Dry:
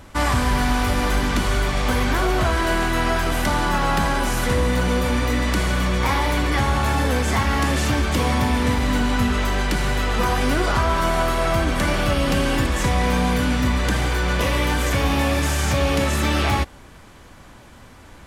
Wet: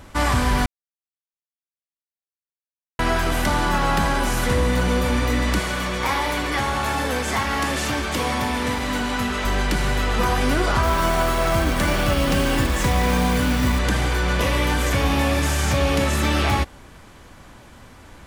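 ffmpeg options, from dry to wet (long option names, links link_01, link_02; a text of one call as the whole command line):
ffmpeg -i in.wav -filter_complex "[0:a]asettb=1/sr,asplit=3[link_01][link_02][link_03];[link_01]atrim=end=5.594[link_04];[link_02]atrim=start=5.59:end=9.45,asetpts=PTS-STARTPTS,afade=type=in:duration=0.004:curve=qsin,afade=type=out:start_time=3.856:duration=0.004:curve=qsin,lowshelf=frequency=210:gain=-10[link_05];[link_03]atrim=start=9.446[link_06];[link_04][link_05]acrossfade=duration=0.004:curve1=hsin:curve2=qsin[link_07];[link_07][link_06]acrossfade=duration=0.004:curve1=qsin:curve2=hsin,asettb=1/sr,asplit=3[link_08][link_09][link_10];[link_08]atrim=end=10.834[link_11];[link_09]atrim=start=10.83:end=13.79,asetpts=PTS-STARTPTS,afade=type=in:duration=0.004:curve=qsin,afade=type=out:start_time=2.956:duration=0.004:curve=qsin,acrusher=bits=4:mode=log:mix=0:aa=0.000001[link_12];[link_10]atrim=start=13.786[link_13];[link_11][link_12]acrossfade=duration=0.004:curve1=hsin:curve2=qsin[link_14];[link_14][link_13]acrossfade=duration=0.004:curve1=qsin:curve2=hsin,asplit=3[link_15][link_16][link_17];[link_15]atrim=end=0.66,asetpts=PTS-STARTPTS,afade=type=out:start_time=0.656:duration=0.004:curve=hsin[link_18];[link_16]atrim=start=0.66:end=2.99,asetpts=PTS-STARTPTS,volume=0[link_19];[link_17]atrim=start=2.99,asetpts=PTS-STARTPTS,afade=type=in:duration=0.004:curve=hsin[link_20];[link_18][link_19][link_20]concat=n=3:v=0:a=1" out.wav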